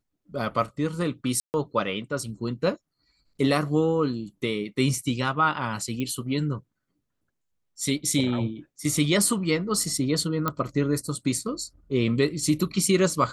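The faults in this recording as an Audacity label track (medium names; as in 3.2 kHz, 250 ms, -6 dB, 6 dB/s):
1.400000	1.540000	dropout 139 ms
6.000000	6.000000	pop -18 dBFS
10.480000	10.480000	pop -11 dBFS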